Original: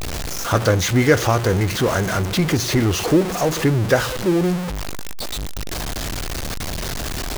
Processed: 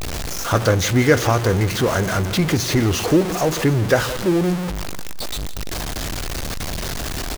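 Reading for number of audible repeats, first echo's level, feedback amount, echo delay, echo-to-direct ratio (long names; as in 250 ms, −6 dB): 2, −17.0 dB, 32%, 167 ms, −16.5 dB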